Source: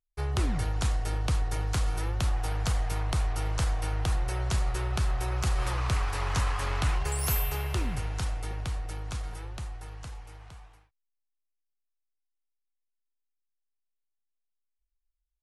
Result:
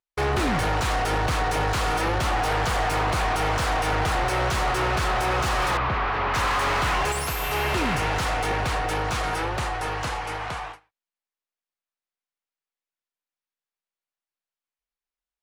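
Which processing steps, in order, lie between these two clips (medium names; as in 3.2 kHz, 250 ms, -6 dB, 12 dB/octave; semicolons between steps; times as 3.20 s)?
gate with hold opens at -42 dBFS; overdrive pedal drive 35 dB, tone 2 kHz, clips at -15 dBFS; 5.77–6.34 s: distance through air 300 m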